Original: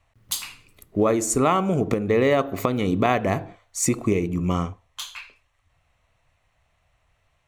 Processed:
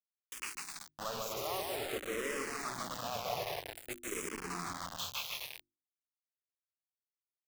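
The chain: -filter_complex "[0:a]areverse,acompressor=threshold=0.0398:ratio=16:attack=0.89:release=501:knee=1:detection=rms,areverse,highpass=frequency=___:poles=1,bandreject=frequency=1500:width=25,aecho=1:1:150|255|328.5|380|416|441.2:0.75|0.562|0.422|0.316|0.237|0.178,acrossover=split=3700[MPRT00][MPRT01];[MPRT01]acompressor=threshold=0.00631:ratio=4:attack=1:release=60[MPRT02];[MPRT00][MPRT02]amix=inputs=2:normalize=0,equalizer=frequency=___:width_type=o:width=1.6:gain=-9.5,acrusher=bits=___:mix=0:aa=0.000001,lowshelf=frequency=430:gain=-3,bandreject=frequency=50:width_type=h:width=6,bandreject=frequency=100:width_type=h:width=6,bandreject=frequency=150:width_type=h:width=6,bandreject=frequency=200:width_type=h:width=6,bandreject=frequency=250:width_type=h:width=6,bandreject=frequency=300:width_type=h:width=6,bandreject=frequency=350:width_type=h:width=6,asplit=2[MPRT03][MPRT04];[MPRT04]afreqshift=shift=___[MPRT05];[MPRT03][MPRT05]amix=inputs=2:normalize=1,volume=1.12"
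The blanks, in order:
77, 190, 5, -0.51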